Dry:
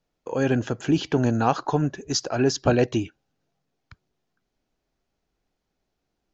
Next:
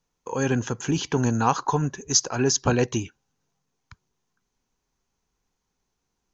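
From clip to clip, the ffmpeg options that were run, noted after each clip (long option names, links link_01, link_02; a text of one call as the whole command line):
ffmpeg -i in.wav -af "equalizer=frequency=315:width_type=o:width=0.33:gain=-6,equalizer=frequency=630:width_type=o:width=0.33:gain=-10,equalizer=frequency=1000:width_type=o:width=0.33:gain=7,equalizer=frequency=6300:width_type=o:width=0.33:gain=11" out.wav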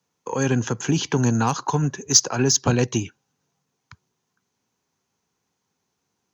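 ffmpeg -i in.wav -filter_complex "[0:a]highpass=frequency=92:width=0.5412,highpass=frequency=92:width=1.3066,aeval=exprs='0.501*(cos(1*acos(clip(val(0)/0.501,-1,1)))-cos(1*PI/2))+0.01*(cos(5*acos(clip(val(0)/0.501,-1,1)))-cos(5*PI/2))+0.0178*(cos(7*acos(clip(val(0)/0.501,-1,1)))-cos(7*PI/2))':channel_layout=same,acrossover=split=230|3000[link_01][link_02][link_03];[link_02]acompressor=threshold=-28dB:ratio=2.5[link_04];[link_01][link_04][link_03]amix=inputs=3:normalize=0,volume=5dB" out.wav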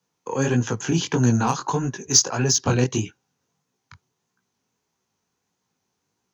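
ffmpeg -i in.wav -af "flanger=delay=16:depth=7.9:speed=1.6,volume=2.5dB" out.wav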